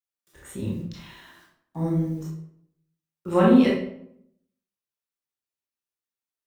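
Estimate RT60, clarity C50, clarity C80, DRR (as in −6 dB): 0.70 s, 2.0 dB, 7.0 dB, −5.5 dB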